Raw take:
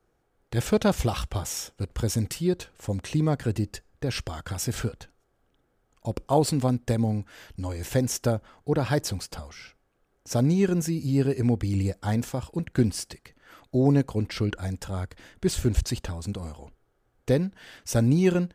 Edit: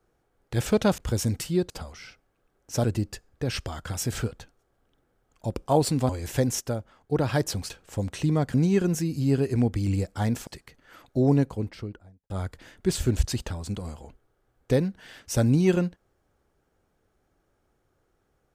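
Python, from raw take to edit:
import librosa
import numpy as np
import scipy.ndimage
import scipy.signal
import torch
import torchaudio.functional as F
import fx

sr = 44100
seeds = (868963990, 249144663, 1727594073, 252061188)

y = fx.studio_fade_out(x, sr, start_s=13.78, length_s=1.1)
y = fx.edit(y, sr, fx.cut(start_s=0.98, length_s=0.91),
    fx.swap(start_s=2.61, length_s=0.84, other_s=9.27, other_length_s=1.14),
    fx.cut(start_s=6.7, length_s=0.96),
    fx.clip_gain(start_s=8.18, length_s=0.51, db=-5.0),
    fx.cut(start_s=12.34, length_s=0.71), tone=tone)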